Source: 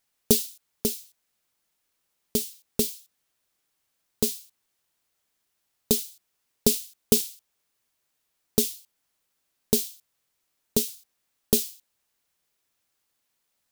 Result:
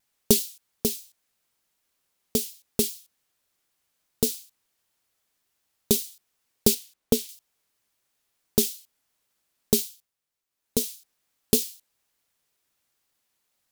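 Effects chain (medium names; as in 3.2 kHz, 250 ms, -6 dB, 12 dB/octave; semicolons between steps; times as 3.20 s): 6.74–7.29 s: treble shelf 3.9 kHz -8 dB; 9.74–10.90 s: dip -10 dB, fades 0.40 s; vibrato with a chosen wave saw down 5.2 Hz, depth 100 cents; trim +1 dB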